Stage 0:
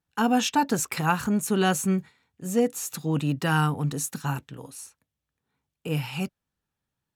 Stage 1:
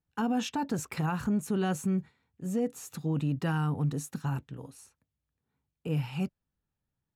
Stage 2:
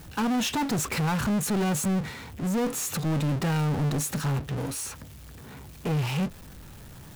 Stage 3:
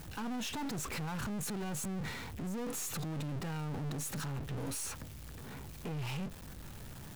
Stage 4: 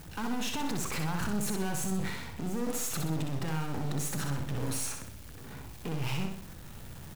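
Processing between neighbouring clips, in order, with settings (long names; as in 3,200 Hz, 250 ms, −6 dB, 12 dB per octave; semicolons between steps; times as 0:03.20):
spectral tilt −2 dB per octave; brickwall limiter −15.5 dBFS, peak gain reduction 6.5 dB; level −6 dB
power curve on the samples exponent 0.35; every ending faded ahead of time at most 320 dB per second
gain on one half-wave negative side −7 dB; brickwall limiter −32.5 dBFS, peak gain reduction 11 dB
in parallel at −6 dB: bit-depth reduction 6 bits, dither none; on the sum: repeating echo 63 ms, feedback 45%, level −5 dB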